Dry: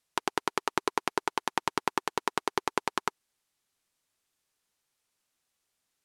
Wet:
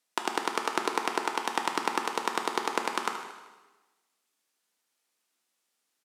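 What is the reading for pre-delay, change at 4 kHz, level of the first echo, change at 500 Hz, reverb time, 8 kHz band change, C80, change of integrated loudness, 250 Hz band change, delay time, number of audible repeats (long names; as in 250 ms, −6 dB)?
3 ms, +1.5 dB, −12.5 dB, +1.0 dB, 1.2 s, +1.5 dB, 8.0 dB, +1.5 dB, +1.0 dB, 77 ms, 1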